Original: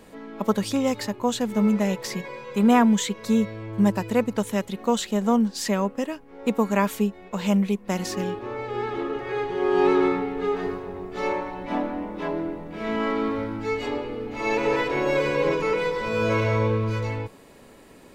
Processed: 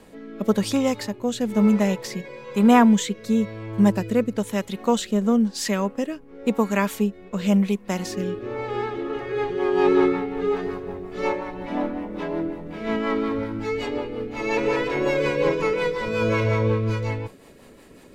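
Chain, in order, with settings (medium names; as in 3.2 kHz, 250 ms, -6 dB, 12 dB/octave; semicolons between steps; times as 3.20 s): rotary cabinet horn 1 Hz, later 5.5 Hz, at 8.68 s; trim +3 dB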